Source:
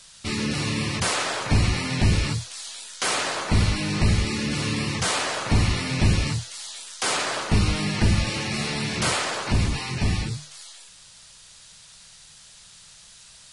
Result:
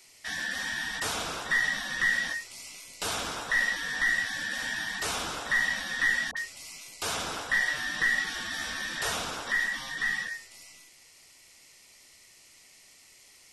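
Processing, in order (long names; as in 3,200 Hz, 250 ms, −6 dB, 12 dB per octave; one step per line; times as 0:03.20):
frequency inversion band by band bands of 2,000 Hz
0:06.31–0:06.93: all-pass dispersion highs, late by 57 ms, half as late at 1,100 Hz
level −7.5 dB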